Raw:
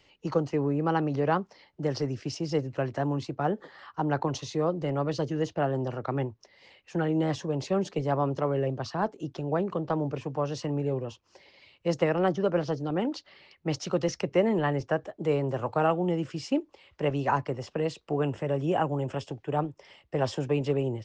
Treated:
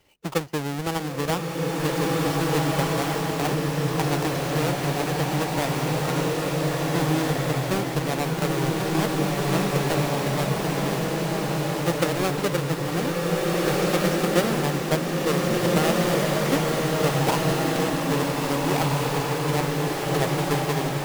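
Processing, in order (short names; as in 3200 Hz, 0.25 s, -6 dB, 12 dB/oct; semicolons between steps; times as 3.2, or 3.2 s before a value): half-waves squared off; transient shaper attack +4 dB, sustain -5 dB; bloom reverb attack 1.84 s, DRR -4.5 dB; gain -5.5 dB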